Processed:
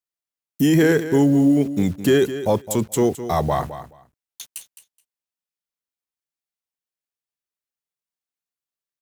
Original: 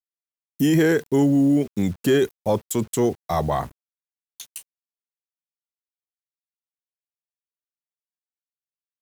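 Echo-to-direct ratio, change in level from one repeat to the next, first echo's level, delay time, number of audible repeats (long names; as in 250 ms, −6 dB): −12.5 dB, −16.0 dB, −12.5 dB, 212 ms, 2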